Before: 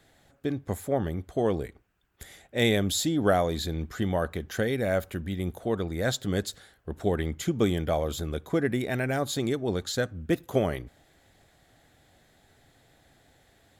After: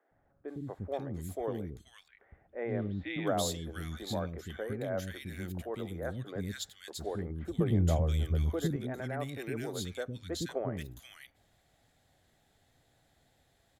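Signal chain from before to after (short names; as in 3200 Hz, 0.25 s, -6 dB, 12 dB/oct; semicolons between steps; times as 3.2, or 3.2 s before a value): 1.6–2.79 LPF 2700 Hz 24 dB/oct; 7.38–8.65 bell 69 Hz +14.5 dB 2.7 oct; three bands offset in time mids, lows, highs 0.11/0.48 s, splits 330/1700 Hz; gain -7.5 dB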